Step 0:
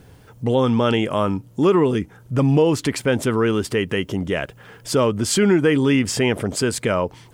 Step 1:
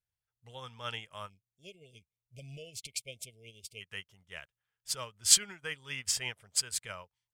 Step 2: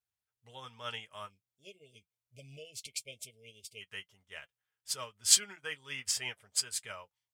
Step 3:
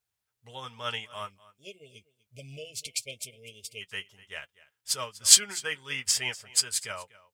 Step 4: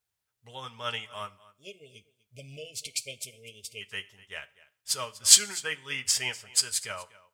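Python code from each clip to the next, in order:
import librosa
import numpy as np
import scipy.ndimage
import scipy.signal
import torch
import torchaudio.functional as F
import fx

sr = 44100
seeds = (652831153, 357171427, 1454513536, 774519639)

y1 = fx.spec_erase(x, sr, start_s=1.3, length_s=2.51, low_hz=700.0, high_hz=2100.0)
y1 = fx.tone_stack(y1, sr, knobs='10-0-10')
y1 = fx.upward_expand(y1, sr, threshold_db=-48.0, expansion=2.5)
y1 = F.gain(torch.from_numpy(y1), 4.0).numpy()
y2 = fx.low_shelf(y1, sr, hz=120.0, db=-11.0)
y2 = fx.notch_comb(y2, sr, f0_hz=170.0)
y3 = y2 + 10.0 ** (-20.0 / 20.0) * np.pad(y2, (int(246 * sr / 1000.0), 0))[:len(y2)]
y3 = F.gain(torch.from_numpy(y3), 7.0).numpy()
y4 = fx.rev_plate(y3, sr, seeds[0], rt60_s=0.57, hf_ratio=0.95, predelay_ms=0, drr_db=17.5)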